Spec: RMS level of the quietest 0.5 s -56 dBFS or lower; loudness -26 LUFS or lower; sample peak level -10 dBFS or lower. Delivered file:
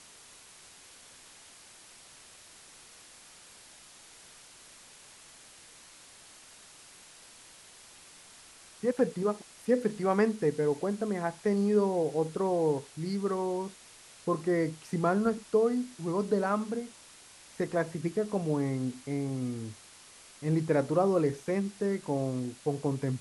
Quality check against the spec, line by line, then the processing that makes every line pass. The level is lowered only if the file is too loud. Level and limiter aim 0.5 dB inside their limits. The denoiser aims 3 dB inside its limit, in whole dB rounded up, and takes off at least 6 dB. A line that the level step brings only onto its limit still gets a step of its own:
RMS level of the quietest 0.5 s -54 dBFS: fail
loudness -30.5 LUFS: pass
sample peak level -14.0 dBFS: pass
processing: noise reduction 6 dB, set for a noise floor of -54 dBFS

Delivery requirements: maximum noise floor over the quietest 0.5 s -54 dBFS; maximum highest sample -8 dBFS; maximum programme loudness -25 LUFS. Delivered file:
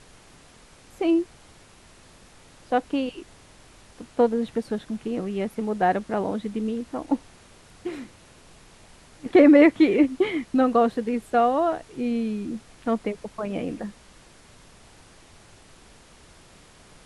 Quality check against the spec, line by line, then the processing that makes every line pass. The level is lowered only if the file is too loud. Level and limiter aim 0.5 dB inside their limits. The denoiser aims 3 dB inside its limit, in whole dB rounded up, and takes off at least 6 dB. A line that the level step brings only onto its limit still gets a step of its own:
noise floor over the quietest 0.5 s -52 dBFS: fail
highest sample -4.5 dBFS: fail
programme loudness -23.5 LUFS: fail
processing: noise reduction 6 dB, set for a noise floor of -52 dBFS; trim -2 dB; peak limiter -8.5 dBFS

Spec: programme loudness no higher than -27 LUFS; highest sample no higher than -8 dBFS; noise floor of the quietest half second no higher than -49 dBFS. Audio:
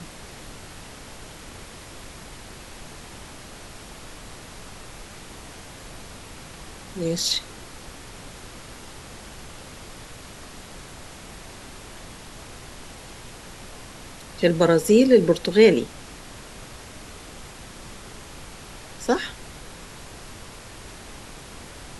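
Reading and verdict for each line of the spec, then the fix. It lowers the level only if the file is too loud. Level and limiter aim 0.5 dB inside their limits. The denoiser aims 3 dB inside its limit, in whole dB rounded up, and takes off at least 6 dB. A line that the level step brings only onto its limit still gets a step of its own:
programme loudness -20.0 LUFS: fail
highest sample -3.0 dBFS: fail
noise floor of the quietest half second -41 dBFS: fail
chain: noise reduction 6 dB, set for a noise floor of -41 dBFS; trim -7.5 dB

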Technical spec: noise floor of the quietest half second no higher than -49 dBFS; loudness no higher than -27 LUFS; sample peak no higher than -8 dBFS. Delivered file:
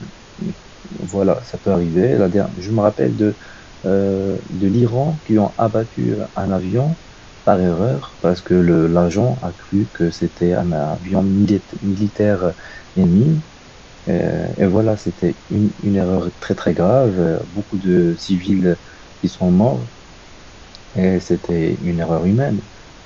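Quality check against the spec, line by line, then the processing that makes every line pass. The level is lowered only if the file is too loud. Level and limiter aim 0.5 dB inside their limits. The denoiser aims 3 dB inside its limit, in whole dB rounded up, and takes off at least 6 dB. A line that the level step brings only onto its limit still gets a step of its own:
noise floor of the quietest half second -41 dBFS: fail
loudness -18.0 LUFS: fail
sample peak -1.5 dBFS: fail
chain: trim -9.5 dB

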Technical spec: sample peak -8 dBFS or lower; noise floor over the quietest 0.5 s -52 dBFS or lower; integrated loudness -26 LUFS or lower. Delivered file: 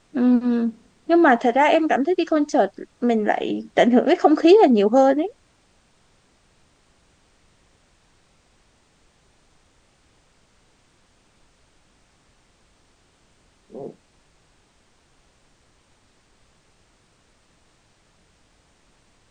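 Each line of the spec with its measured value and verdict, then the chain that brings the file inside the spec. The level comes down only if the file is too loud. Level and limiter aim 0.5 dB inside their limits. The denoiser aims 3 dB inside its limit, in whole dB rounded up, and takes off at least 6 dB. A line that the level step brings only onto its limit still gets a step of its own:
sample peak -4.0 dBFS: fail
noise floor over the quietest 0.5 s -60 dBFS: pass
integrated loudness -18.0 LUFS: fail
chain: trim -8.5 dB

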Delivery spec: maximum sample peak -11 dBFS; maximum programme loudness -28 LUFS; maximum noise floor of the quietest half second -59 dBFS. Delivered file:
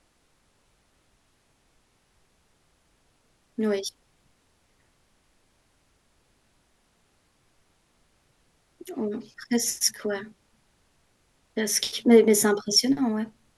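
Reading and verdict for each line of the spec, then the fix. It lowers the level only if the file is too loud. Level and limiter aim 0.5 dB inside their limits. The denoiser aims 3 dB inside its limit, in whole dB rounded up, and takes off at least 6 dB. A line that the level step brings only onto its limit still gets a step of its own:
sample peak -6.0 dBFS: fail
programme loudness -24.0 LUFS: fail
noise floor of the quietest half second -67 dBFS: pass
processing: trim -4.5 dB; peak limiter -11.5 dBFS

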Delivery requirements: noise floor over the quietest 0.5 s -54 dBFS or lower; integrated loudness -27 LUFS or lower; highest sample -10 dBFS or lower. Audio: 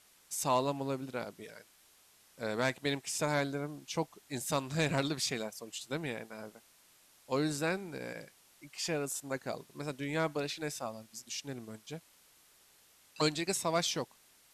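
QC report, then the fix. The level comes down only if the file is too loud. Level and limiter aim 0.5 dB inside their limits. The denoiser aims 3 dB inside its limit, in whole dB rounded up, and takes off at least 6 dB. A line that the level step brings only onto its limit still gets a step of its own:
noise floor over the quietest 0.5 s -64 dBFS: pass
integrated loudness -35.5 LUFS: pass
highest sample -18.0 dBFS: pass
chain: none needed

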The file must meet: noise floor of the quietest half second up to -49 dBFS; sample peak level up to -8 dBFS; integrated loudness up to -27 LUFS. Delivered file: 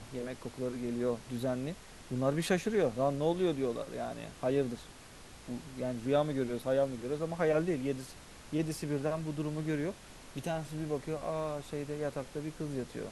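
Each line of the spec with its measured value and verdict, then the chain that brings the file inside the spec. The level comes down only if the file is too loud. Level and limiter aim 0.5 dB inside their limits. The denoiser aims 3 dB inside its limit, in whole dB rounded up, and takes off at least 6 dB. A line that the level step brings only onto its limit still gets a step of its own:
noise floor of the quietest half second -52 dBFS: pass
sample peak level -16.0 dBFS: pass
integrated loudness -34.5 LUFS: pass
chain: none needed

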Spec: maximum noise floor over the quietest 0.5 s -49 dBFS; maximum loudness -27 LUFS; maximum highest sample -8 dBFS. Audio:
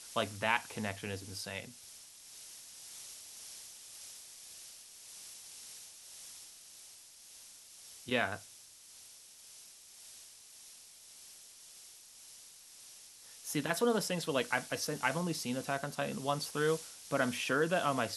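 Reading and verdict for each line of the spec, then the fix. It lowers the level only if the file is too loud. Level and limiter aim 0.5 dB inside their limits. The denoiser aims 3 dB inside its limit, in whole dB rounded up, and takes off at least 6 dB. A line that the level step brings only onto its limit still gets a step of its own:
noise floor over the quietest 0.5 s -56 dBFS: pass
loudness -36.0 LUFS: pass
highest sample -14.0 dBFS: pass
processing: none needed

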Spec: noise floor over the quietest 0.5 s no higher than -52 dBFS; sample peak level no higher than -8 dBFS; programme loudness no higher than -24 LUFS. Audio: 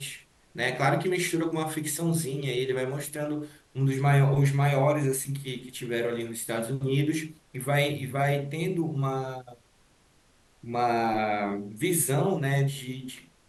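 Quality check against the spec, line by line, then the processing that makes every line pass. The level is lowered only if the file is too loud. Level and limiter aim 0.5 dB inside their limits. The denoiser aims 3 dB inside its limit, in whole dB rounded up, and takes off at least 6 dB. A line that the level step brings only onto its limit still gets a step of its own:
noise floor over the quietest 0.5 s -62 dBFS: pass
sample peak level -10.0 dBFS: pass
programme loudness -27.5 LUFS: pass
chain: none needed

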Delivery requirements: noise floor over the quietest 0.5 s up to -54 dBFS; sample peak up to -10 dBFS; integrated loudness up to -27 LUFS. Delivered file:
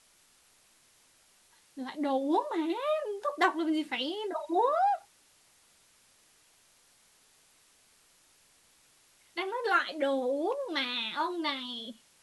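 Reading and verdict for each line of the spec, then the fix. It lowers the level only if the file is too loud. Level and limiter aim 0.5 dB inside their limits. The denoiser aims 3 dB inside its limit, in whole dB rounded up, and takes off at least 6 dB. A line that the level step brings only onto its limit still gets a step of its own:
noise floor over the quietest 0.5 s -64 dBFS: pass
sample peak -13.0 dBFS: pass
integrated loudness -31.0 LUFS: pass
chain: none needed

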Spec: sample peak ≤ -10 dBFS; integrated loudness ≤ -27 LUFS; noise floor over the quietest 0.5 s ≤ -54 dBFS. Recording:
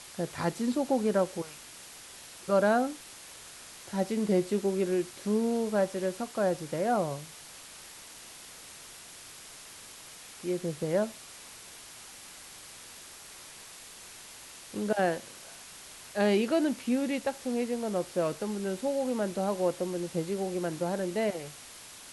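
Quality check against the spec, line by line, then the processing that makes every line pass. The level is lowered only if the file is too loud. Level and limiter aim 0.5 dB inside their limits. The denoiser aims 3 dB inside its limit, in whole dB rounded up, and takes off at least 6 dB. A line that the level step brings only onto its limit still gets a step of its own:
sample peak -13.5 dBFS: pass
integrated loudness -30.5 LUFS: pass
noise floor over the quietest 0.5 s -48 dBFS: fail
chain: noise reduction 9 dB, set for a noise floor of -48 dBFS

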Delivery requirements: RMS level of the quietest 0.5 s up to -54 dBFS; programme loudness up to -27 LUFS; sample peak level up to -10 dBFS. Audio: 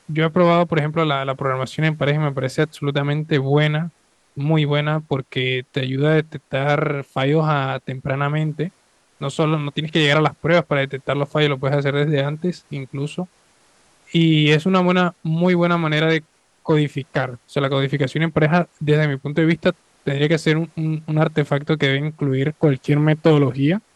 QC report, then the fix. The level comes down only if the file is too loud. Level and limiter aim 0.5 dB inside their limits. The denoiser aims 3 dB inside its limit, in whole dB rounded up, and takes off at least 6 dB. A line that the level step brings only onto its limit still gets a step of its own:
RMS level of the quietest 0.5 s -59 dBFS: pass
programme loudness -19.5 LUFS: fail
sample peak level -2.5 dBFS: fail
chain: trim -8 dB

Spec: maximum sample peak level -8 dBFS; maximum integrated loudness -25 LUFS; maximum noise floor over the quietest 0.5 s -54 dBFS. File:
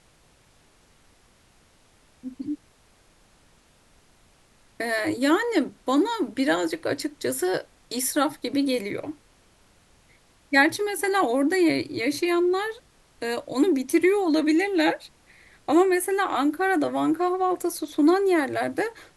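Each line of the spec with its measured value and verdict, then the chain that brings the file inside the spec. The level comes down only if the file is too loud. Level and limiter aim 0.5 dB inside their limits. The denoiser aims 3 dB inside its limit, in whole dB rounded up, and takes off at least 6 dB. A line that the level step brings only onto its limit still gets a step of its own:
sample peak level -6.0 dBFS: fail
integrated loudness -24.0 LUFS: fail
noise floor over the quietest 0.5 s -59 dBFS: pass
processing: trim -1.5 dB; peak limiter -8.5 dBFS

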